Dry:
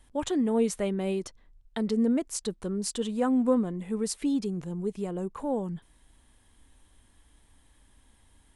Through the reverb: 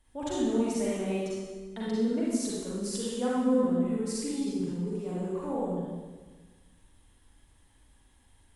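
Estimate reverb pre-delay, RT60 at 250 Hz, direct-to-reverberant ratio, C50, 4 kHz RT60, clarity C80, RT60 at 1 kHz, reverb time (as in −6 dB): 38 ms, 1.6 s, −7.5 dB, −4.5 dB, 1.3 s, −0.5 dB, 1.3 s, 1.4 s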